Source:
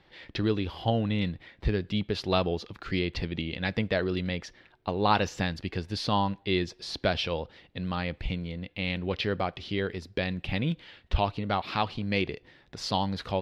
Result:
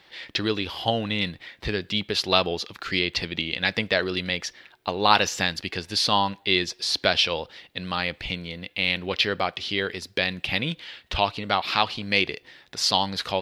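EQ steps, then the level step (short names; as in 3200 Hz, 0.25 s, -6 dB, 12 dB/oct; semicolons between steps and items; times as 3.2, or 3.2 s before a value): tilt +3 dB/oct; +5.5 dB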